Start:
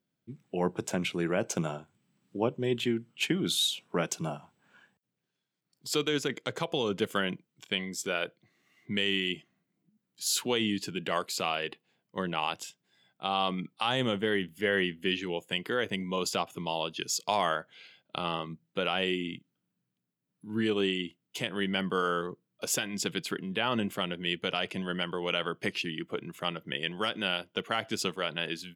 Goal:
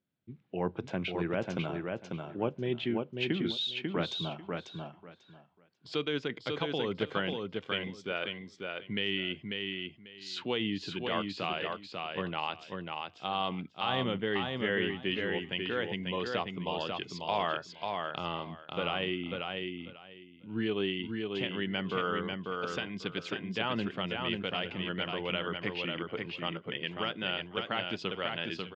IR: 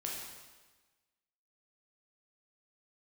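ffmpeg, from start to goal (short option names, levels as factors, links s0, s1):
-af "lowpass=f=4000:w=0.5412,lowpass=f=4000:w=1.3066,equalizer=f=87:w=4.1:g=9.5,aecho=1:1:543|1086|1629:0.631|0.12|0.0228,volume=0.668"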